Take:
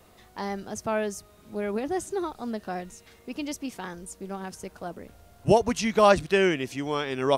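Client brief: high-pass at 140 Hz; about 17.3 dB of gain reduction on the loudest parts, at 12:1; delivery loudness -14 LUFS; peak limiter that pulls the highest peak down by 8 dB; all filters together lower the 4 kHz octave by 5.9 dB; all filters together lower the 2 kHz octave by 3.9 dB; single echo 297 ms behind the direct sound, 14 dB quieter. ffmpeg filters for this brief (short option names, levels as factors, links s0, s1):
-af "highpass=140,equalizer=f=2000:t=o:g=-3.5,equalizer=f=4000:t=o:g=-7,acompressor=threshold=0.0282:ratio=12,alimiter=level_in=1.88:limit=0.0631:level=0:latency=1,volume=0.531,aecho=1:1:297:0.2,volume=20"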